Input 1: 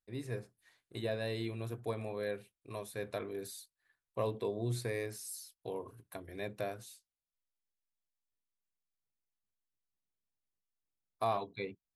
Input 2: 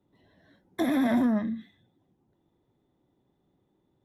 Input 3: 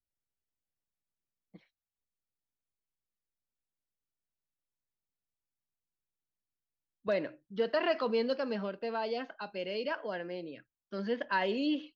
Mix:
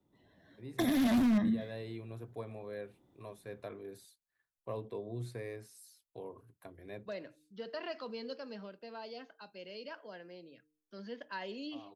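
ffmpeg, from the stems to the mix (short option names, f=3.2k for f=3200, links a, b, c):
-filter_complex "[0:a]highshelf=f=2.7k:g=-8,adelay=500,volume=-5dB[a];[1:a]dynaudnorm=f=120:g=11:m=7dB,aeval=exprs='0.211*(abs(mod(val(0)/0.211+3,4)-2)-1)':c=same,volume=-4dB[b];[2:a]bass=f=250:g=2,treble=f=4k:g=10,bandreject=f=152.3:t=h:w=4,bandreject=f=304.6:t=h:w=4,bandreject=f=456.9:t=h:w=4,volume=-11.5dB,asplit=2[c][d];[d]apad=whole_len=549278[e];[a][e]sidechaincompress=threshold=-59dB:ratio=8:attack=11:release=351[f];[f][b][c]amix=inputs=3:normalize=0,acrossover=split=200|3000[g][h][i];[h]acompressor=threshold=-32dB:ratio=6[j];[g][j][i]amix=inputs=3:normalize=0"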